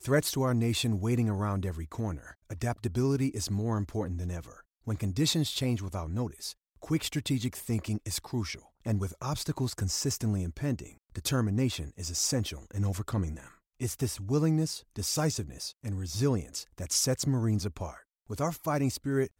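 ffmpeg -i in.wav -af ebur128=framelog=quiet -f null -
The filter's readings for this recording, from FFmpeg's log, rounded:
Integrated loudness:
  I:         -31.4 LUFS
  Threshold: -41.6 LUFS
Loudness range:
  LRA:         2.5 LU
  Threshold: -51.9 LUFS
  LRA low:   -33.1 LUFS
  LRA high:  -30.7 LUFS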